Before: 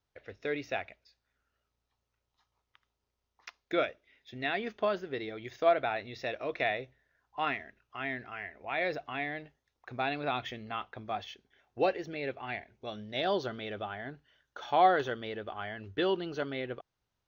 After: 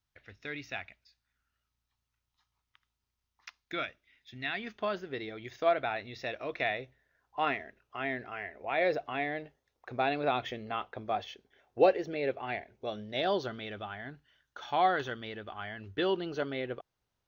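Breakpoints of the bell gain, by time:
bell 500 Hz 1.3 oct
4.51 s -13 dB
4.98 s -2.5 dB
6.73 s -2.5 dB
7.56 s +6 dB
12.85 s +6 dB
13.81 s -5.5 dB
15.63 s -5.5 dB
16.26 s +1.5 dB

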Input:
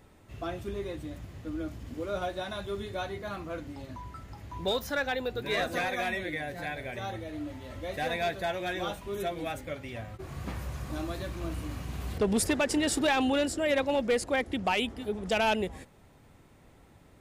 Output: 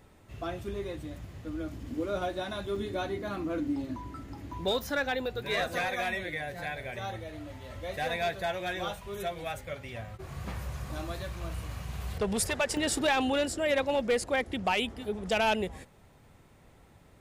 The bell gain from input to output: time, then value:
bell 290 Hz 0.57 oct
-1.5 dB
from 1.72 s +7 dB
from 2.76 s +13.5 dB
from 4.53 s +2 dB
from 5.26 s -7.5 dB
from 8.88 s -14 dB
from 9.73 s -7.5 dB
from 11.18 s -14.5 dB
from 12.77 s -3.5 dB

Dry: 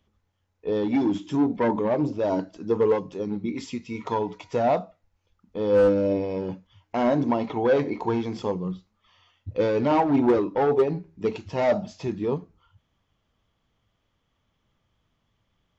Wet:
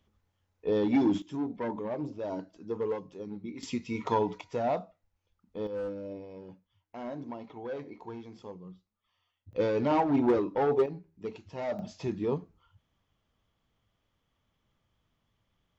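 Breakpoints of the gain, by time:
-2 dB
from 1.22 s -11 dB
from 3.63 s -1 dB
from 4.41 s -7.5 dB
from 5.67 s -17 dB
from 9.53 s -5 dB
from 10.86 s -12 dB
from 11.79 s -4 dB

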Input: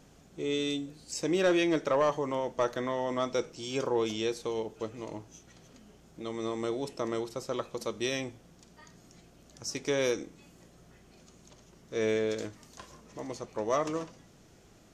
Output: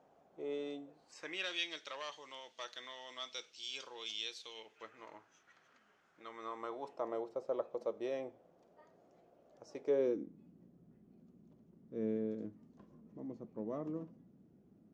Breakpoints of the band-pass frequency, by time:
band-pass, Q 2.1
0.98 s 710 Hz
1.5 s 3600 Hz
4.44 s 3600 Hz
4.95 s 1500 Hz
6.29 s 1500 Hz
7.31 s 590 Hz
9.83 s 590 Hz
10.25 s 220 Hz

